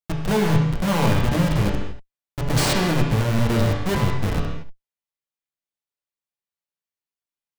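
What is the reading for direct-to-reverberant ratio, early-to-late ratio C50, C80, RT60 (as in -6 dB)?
-1.5 dB, 2.5 dB, 4.5 dB, not exponential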